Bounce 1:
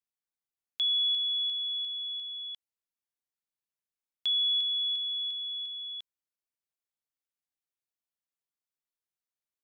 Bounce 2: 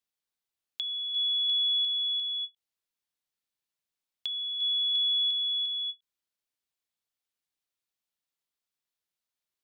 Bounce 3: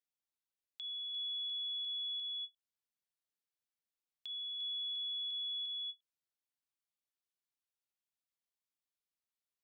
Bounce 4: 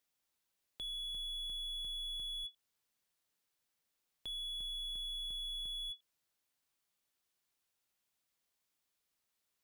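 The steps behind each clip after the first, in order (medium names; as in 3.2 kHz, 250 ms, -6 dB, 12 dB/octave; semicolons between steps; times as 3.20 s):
peaking EQ 3.7 kHz +4.5 dB 1.1 oct; compressor with a negative ratio -27 dBFS, ratio -0.5; endings held to a fixed fall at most 480 dB/s
peak limiter -28 dBFS, peak gain reduction 7 dB; trim -8.5 dB
slew-rate limiter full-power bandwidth 9.9 Hz; trim +9.5 dB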